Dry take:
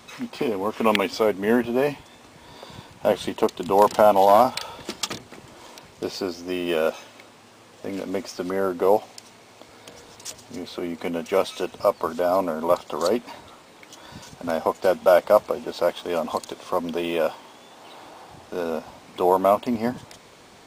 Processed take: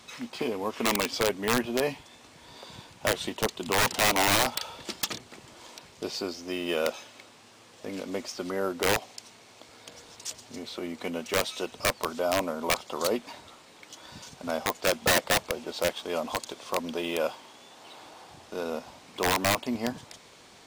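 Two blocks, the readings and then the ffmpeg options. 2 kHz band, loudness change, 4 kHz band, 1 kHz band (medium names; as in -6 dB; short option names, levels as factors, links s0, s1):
+3.0 dB, -6.0 dB, +3.5 dB, -8.5 dB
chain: -af "equalizer=f=5200:w=0.4:g=5.5,aeval=exprs='(mod(3.35*val(0)+1,2)-1)/3.35':c=same,volume=0.501"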